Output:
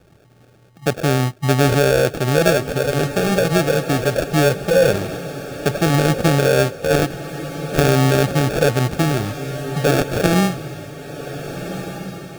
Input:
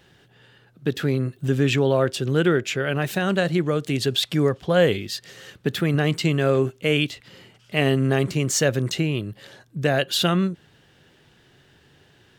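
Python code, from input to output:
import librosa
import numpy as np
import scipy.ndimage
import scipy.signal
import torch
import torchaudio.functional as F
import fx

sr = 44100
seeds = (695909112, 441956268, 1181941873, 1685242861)

y = fx.env_lowpass(x, sr, base_hz=1400.0, full_db=-15.5)
y = fx.low_shelf(y, sr, hz=130.0, db=7.0)
y = fx.sample_hold(y, sr, seeds[0], rate_hz=1000.0, jitter_pct=0)
y = fx.formant_shift(y, sr, semitones=4)
y = fx.echo_diffused(y, sr, ms=1523, feedback_pct=41, wet_db=-11.0)
y = F.gain(torch.from_numpy(y), 3.0).numpy()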